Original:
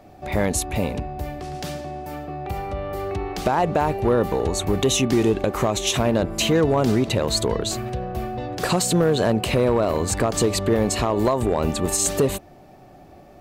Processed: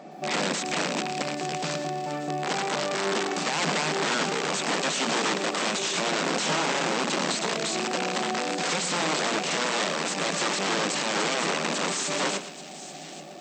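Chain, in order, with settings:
loose part that buzzes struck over −31 dBFS, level −22 dBFS
0:06.26–0:07.36: low-shelf EQ 180 Hz +11.5 dB
mains-hum notches 60/120/180/240/300/360/420/480 Hz
in parallel at −3 dB: downward compressor 4 to 1, threshold −37 dBFS, peak gain reduction 21 dB
on the sum: brickwall limiter −16 dBFS, peak gain reduction 11.5 dB
wrap-around overflow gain 20.5 dB
delay with a high-pass on its return 832 ms, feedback 49%, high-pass 2,600 Hz, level −13 dB
brick-wall band-pass 140–8,300 Hz
feedback echo at a low word length 115 ms, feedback 35%, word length 9 bits, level −11.5 dB

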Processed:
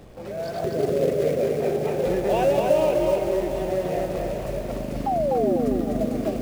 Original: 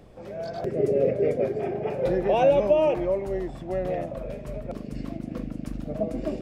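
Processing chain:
in parallel at −7 dB: log-companded quantiser 4 bits
0:05.43–0:05.96: on the sum: hollow resonant body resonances 250/400/1,200/1,900 Hz, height 14 dB, ringing for 75 ms
0:05.06–0:05.57: sound drawn into the spectrogram fall 330–830 Hz −20 dBFS
on a send: feedback echo with a high-pass in the loop 401 ms, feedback 71%, high-pass 200 Hz, level −13 dB
on the sum: downward compressor 1.5 to 1, threshold −29 dBFS, peak gain reduction 6.5 dB
feedback echo at a low word length 249 ms, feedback 35%, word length 8 bits, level −3 dB
level +1 dB

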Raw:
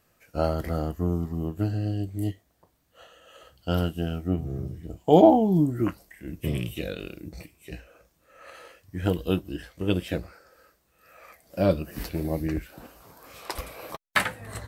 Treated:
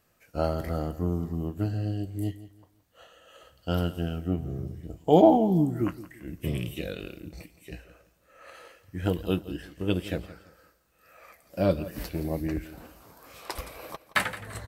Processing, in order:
repeating echo 170 ms, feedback 30%, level −16 dB
level −2 dB

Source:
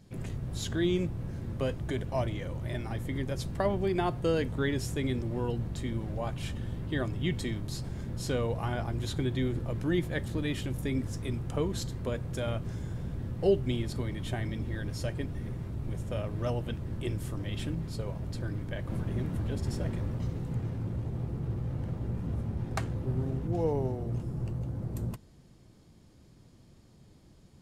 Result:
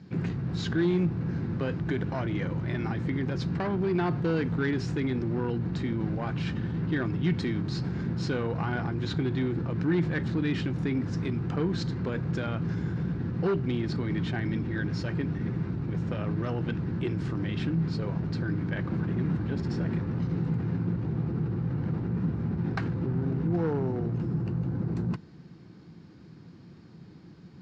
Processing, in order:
in parallel at −1.5 dB: compressor whose output falls as the input rises −36 dBFS, ratio −1
on the sum: hard clipping −23.5 dBFS, distortion −18 dB
loudspeaker in its box 110–4,800 Hz, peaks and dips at 170 Hz +8 dB, 320 Hz +4 dB, 600 Hz −8 dB, 1,500 Hz +5 dB, 3,300 Hz −6 dB

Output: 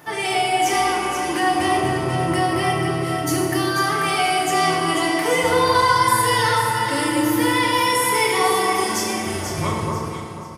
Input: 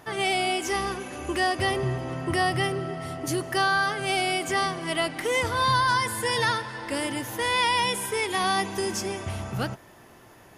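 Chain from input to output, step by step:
turntable brake at the end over 1.21 s
high-pass filter 130 Hz 6 dB per octave
high-shelf EQ 12,000 Hz +9 dB
comb filter 5.5 ms, depth 33%
dynamic equaliser 1,100 Hz, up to +6 dB, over −41 dBFS, Q 3.9
brickwall limiter −17.5 dBFS, peak gain reduction 7.5 dB
delay that swaps between a low-pass and a high-pass 244 ms, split 1,300 Hz, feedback 57%, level −2 dB
feedback delay network reverb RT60 1.8 s, low-frequency decay 1.2×, high-frequency decay 0.65×, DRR −2.5 dB
level +2 dB

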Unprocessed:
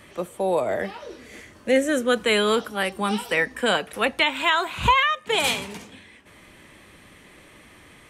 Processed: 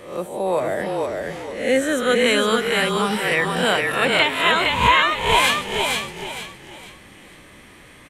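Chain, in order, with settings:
peak hold with a rise ahead of every peak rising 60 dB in 0.56 s
echo with shifted repeats 463 ms, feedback 33%, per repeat −31 Hz, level −3 dB

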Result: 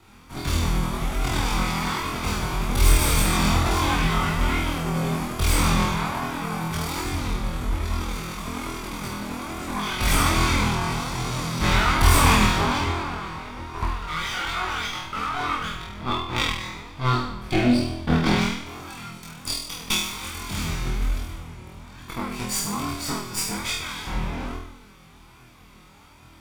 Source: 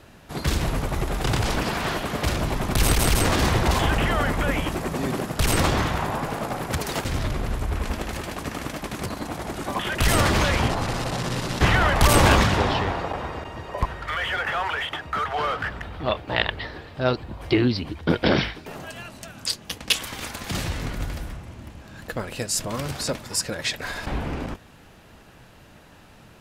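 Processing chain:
lower of the sound and its delayed copy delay 0.86 ms
flutter between parallel walls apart 4.2 metres, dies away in 0.71 s
chorus effect 1.2 Hz, delay 19 ms, depth 2.7 ms

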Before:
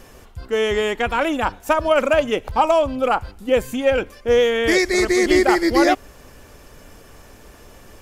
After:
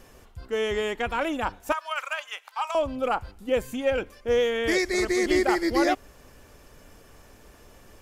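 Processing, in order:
0:01.72–0:02.75: high-pass filter 1,000 Hz 24 dB per octave
level −7 dB

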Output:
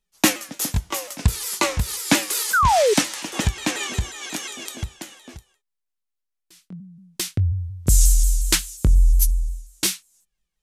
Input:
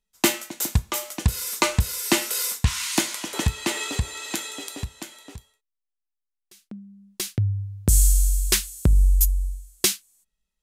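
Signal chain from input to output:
pitch shifter swept by a sawtooth −3.5 semitones, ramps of 179 ms
sound drawn into the spectrogram fall, 0:02.53–0:02.94, 390–1,600 Hz −19 dBFS
level +2.5 dB

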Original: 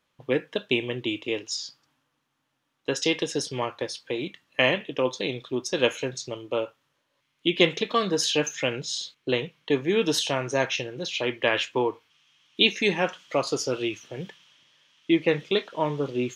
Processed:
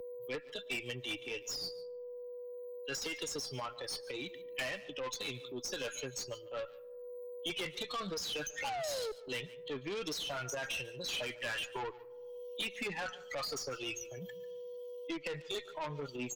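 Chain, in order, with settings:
spectral dynamics exaggerated over time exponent 2
RIAA equalisation recording
treble cut that deepens with the level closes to 2,000 Hz, closed at −23.5 dBFS
high-shelf EQ 2,100 Hz +6.5 dB
transient designer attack −12 dB, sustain +3 dB
downward compressor 6 to 1, threshold −32 dBFS, peak gain reduction 12 dB
sound drawn into the spectrogram fall, 0:08.64–0:09.12, 420–860 Hz −33 dBFS
steady tone 490 Hz −54 dBFS
tube saturation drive 38 dB, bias 0.3
single-tap delay 144 ms −20 dB
on a send at −24 dB: convolution reverb RT60 0.95 s, pre-delay 65 ms
on the sum: multiband upward and downward compressor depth 70%
level +3.5 dB

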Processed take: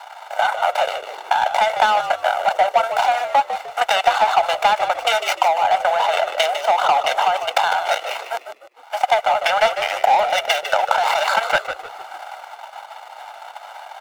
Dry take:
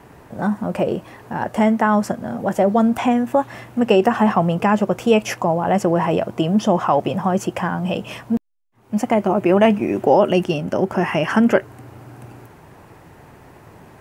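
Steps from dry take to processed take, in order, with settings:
running median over 25 samples
Butterworth high-pass 740 Hz 36 dB per octave
comb filter 1.4 ms, depth 68%
mid-hump overdrive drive 17 dB, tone 6,200 Hz, clips at −2 dBFS
in parallel at +2 dB: compressor whose output falls as the input rises −23 dBFS, ratio −1
on the sum: transient designer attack +5 dB, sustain −9 dB
on a send: echo with shifted repeats 151 ms, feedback 32%, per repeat −65 Hz, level −9.5 dB
on the sum: level −6 dB

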